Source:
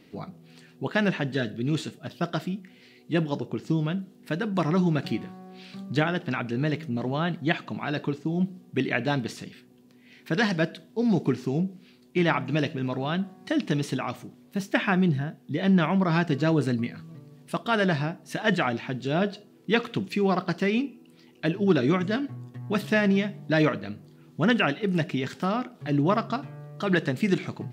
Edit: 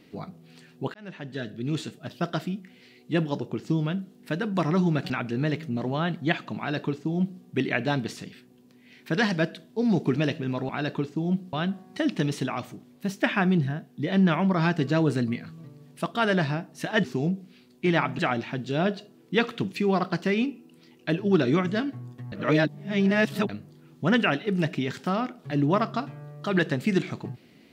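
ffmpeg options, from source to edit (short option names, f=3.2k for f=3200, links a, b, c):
-filter_complex "[0:a]asplit=10[a][b][c][d][e][f][g][h][i][j];[a]atrim=end=0.94,asetpts=PTS-STARTPTS,afade=t=out:st=0.936:d=0.004:c=hsin[k];[b]atrim=start=0.94:end=5.102,asetpts=PTS-STARTPTS,afade=t=in:d=1.36:c=qsin[l];[c]atrim=start=6.298:end=11.362[m];[d]atrim=start=12.508:end=13.042[n];[e]atrim=start=7.778:end=8.622[o];[f]atrim=start=13.038:end=18.552[p];[g]atrim=start=11.358:end=12.512[q];[h]atrim=start=18.548:end=22.682[r];[i]atrim=start=22.678:end=23.852,asetpts=PTS-STARTPTS,areverse[s];[j]atrim=start=23.848[t];[k][l]concat=n=2:v=0:a=1[u];[u][m]acrossfade=d=0.004:c1=hsin:c2=hsin[v];[v][n]acrossfade=d=0.004:c1=hsin:c2=hsin[w];[w][o]acrossfade=d=0.004:c1=hsin:c2=hsin[x];[x][p]acrossfade=d=0.004:c1=hsin:c2=hsin[y];[y][q]acrossfade=d=0.004:c1=hsin:c2=hsin[z];[z][r]acrossfade=d=0.004:c1=hsin:c2=hsin[aa];[aa][s]acrossfade=d=0.004:c1=hsin:c2=hsin[ab];[ab][t]acrossfade=d=0.004:c1=hsin:c2=hsin"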